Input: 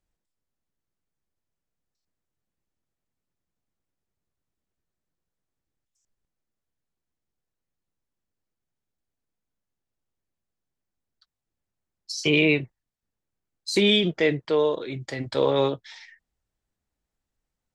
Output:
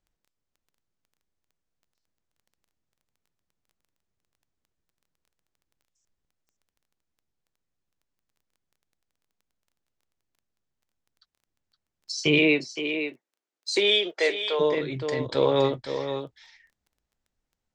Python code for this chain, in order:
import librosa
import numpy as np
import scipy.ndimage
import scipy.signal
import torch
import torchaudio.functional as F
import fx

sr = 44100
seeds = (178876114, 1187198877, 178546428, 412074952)

y = scipy.signal.sosfilt(scipy.signal.butter(4, 7900.0, 'lowpass', fs=sr, output='sos'), x)
y = y + 10.0 ** (-8.5 / 20.0) * np.pad(y, (int(517 * sr / 1000.0), 0))[:len(y)]
y = fx.dmg_crackle(y, sr, seeds[0], per_s=12.0, level_db=-51.0)
y = fx.highpass(y, sr, hz=fx.line((12.38, 180.0), (14.59, 520.0)), slope=24, at=(12.38, 14.59), fade=0.02)